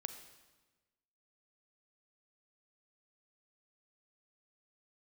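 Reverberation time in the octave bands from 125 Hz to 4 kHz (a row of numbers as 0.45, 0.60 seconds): 1.4, 1.4, 1.3, 1.2, 1.1, 1.1 seconds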